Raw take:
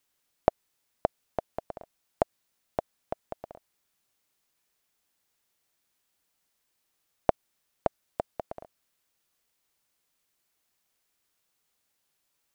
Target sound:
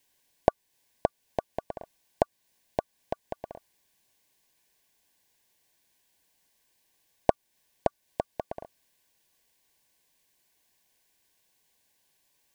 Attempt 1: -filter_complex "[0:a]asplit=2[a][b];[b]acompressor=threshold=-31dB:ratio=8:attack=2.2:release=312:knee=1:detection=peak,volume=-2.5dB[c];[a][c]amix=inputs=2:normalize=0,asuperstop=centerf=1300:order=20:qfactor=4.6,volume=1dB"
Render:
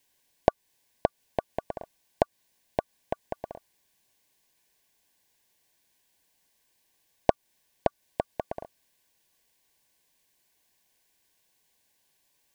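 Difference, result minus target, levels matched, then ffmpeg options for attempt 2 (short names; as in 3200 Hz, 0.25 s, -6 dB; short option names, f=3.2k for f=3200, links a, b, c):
compressor: peak gain reduction -8 dB
-filter_complex "[0:a]asplit=2[a][b];[b]acompressor=threshold=-40dB:ratio=8:attack=2.2:release=312:knee=1:detection=peak,volume=-2.5dB[c];[a][c]amix=inputs=2:normalize=0,asuperstop=centerf=1300:order=20:qfactor=4.6,volume=1dB"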